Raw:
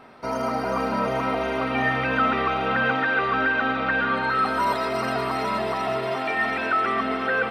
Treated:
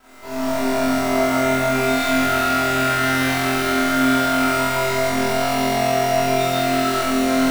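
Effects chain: minimum comb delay 3 ms; soft clip -27 dBFS, distortion -10 dB; companded quantiser 4-bit; flutter echo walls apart 3.9 m, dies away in 1.5 s; Schroeder reverb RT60 3.1 s, combs from 27 ms, DRR -8.5 dB; gain -6.5 dB

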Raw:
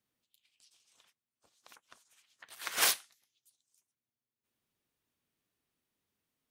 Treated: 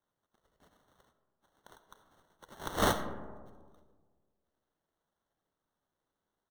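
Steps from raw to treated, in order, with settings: HPF 730 Hz 24 dB/oct; comb 2 ms, depth 57%; sample-and-hold 18×; digital reverb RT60 1.6 s, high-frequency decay 0.3×, pre-delay 25 ms, DRR 10 dB; gain -1.5 dB

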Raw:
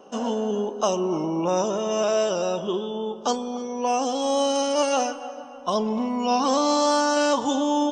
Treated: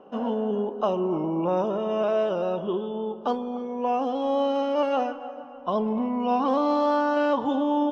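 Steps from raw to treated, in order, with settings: air absorption 460 m

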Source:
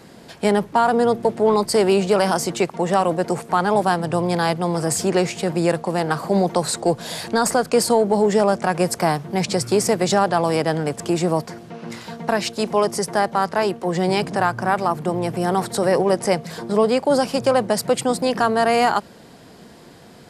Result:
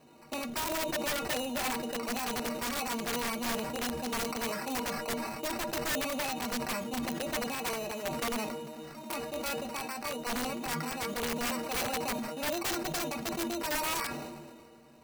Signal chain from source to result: high shelf 2900 Hz -9.5 dB; speed mistake 33 rpm record played at 45 rpm; in parallel at +2 dB: limiter -15 dBFS, peak gain reduction 8 dB; on the sum: high shelf 8000 Hz -7.5 dB; sample-and-hold 13×; metallic resonator 70 Hz, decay 0.22 s, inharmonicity 0.03; flange 0.16 Hz, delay 7.3 ms, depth 7.5 ms, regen -52%; wrapped overs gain 18 dB; sustainer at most 33 dB/s; gain -9 dB

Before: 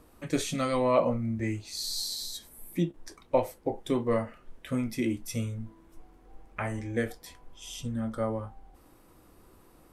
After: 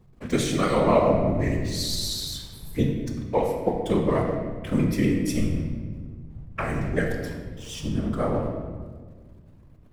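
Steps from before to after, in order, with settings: trilling pitch shifter -1 st, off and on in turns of 63 ms; backlash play -47.5 dBFS; whisperiser; on a send: reverb RT60 1.6 s, pre-delay 19 ms, DRR 2 dB; on the sum: gain +4.5 dB

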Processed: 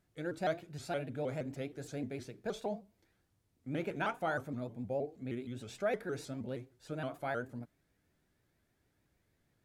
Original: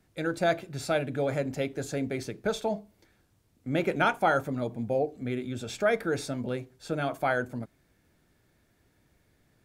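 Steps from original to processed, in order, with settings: harmonic-percussive split percussive -5 dB; shaped vibrato saw up 6.4 Hz, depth 160 cents; gain -7.5 dB

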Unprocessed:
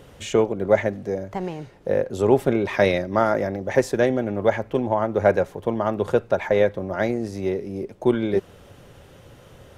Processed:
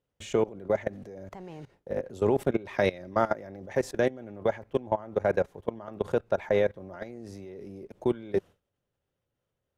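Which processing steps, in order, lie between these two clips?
level quantiser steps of 20 dB; gate with hold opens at -48 dBFS; gain -2.5 dB

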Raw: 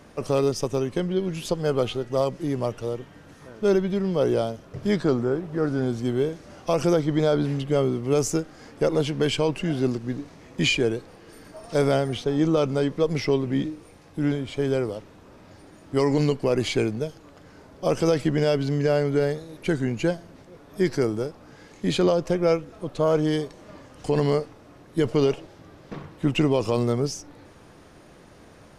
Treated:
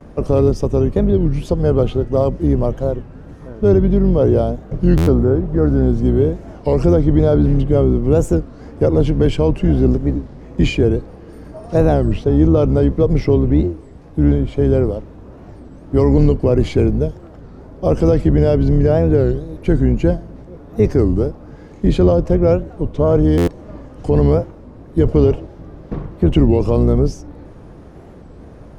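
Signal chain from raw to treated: octaver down 2 oct, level -1 dB; gate with hold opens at -43 dBFS; tilt shelf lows +8.5 dB, about 1200 Hz; in parallel at +2 dB: limiter -10 dBFS, peak gain reduction 8.5 dB; on the sum: stuck buffer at 4.97/23.37, samples 512, times 8; record warp 33 1/3 rpm, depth 250 cents; gain -4 dB

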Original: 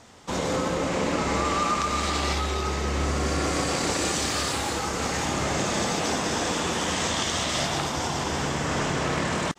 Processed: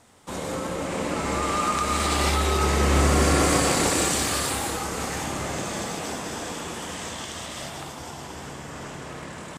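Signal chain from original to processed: Doppler pass-by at 3.05, 6 m/s, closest 4.8 m; resonant high shelf 7900 Hz +8 dB, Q 1.5; gain +6.5 dB

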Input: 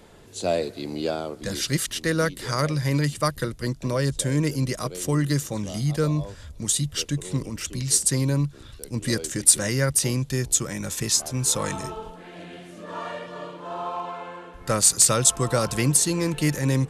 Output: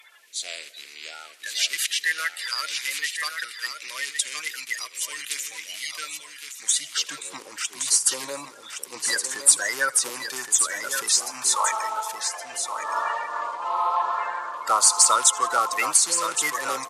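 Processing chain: bin magnitudes rounded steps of 30 dB; 11.43–12.52 HPF 430 Hz 24 dB/oct; in parallel at -1 dB: compressor, threshold -34 dBFS, peak gain reduction 21 dB; on the sum: high-pass sweep 2300 Hz -> 960 Hz, 6.45–7.13; on a send: echo 1.119 s -7.5 dB; on the sum: warbling echo 82 ms, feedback 69%, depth 164 cents, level -22.5 dB

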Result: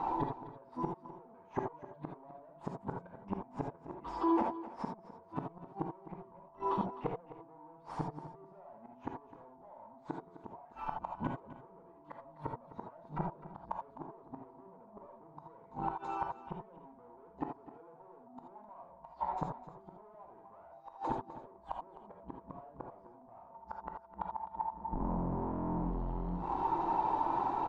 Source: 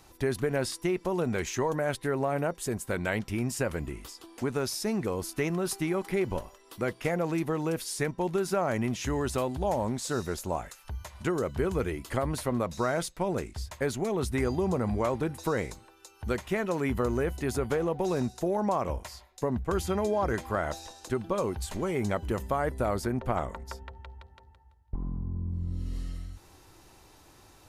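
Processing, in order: per-bin expansion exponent 1.5; notches 50/100/150/200/250/300 Hz; power-law curve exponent 0.5; in parallel at +2.5 dB: compressor 12:1, threshold -40 dBFS, peak gain reduction 17.5 dB; on the sum: resonant low shelf 130 Hz -13.5 dB, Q 1.5; soft clip -30.5 dBFS, distortion -7 dB; synth low-pass 930 Hz, resonance Q 7.1; flipped gate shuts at -24 dBFS, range -32 dB; whine 670 Hz -62 dBFS; on a send: echo 0.257 s -15 dB; on the sum: non-linear reverb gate 0.1 s rising, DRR 2 dB; gain +1.5 dB

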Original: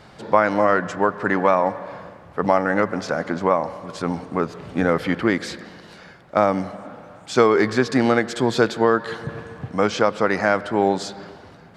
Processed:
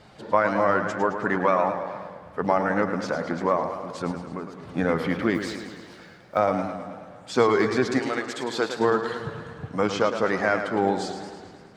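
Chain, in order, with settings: bin magnitudes rounded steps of 15 dB; 4.11–4.72 compressor 3:1, threshold -29 dBFS, peak gain reduction 10 dB; 5.34–6.37 modulation noise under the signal 30 dB; 7.98–8.78 HPF 1500 Hz -> 400 Hz 6 dB/oct; warbling echo 0.108 s, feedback 62%, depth 105 cents, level -9 dB; gain -4 dB

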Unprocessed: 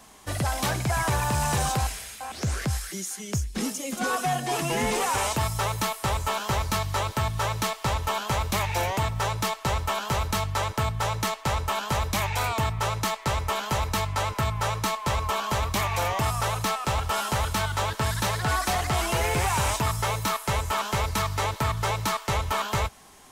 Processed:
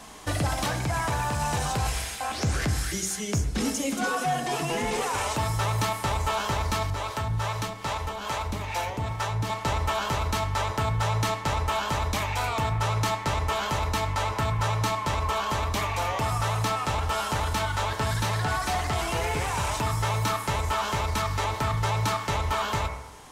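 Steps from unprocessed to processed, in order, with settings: high shelf 11000 Hz -9.5 dB; de-hum 64.82 Hz, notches 37; limiter -24 dBFS, peak gain reduction 7 dB; vocal rider within 4 dB 0.5 s; 6.9–9.5 harmonic tremolo 2.4 Hz, depth 70%, crossover 420 Hz; FDN reverb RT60 1.3 s, low-frequency decay 0.75×, high-frequency decay 0.4×, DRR 8.5 dB; gain +3.5 dB

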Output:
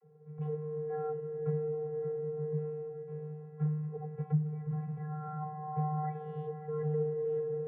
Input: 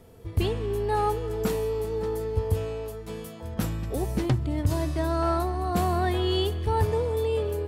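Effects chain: octaver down 2 oct, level -6 dB; LPF 1700 Hz 24 dB/oct; vocoder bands 32, square 152 Hz; on a send: diffused feedback echo 0.594 s, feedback 43%, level -11.5 dB; on the sum: gain -6.5 dB

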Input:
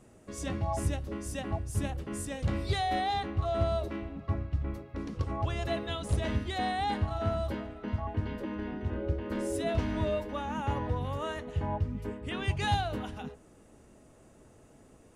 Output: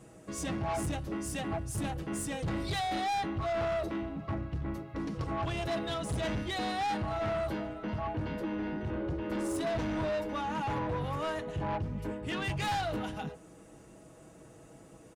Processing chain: HPF 47 Hz; comb 6.2 ms, depth 53%; soft clip -32 dBFS, distortion -9 dB; gain +3 dB

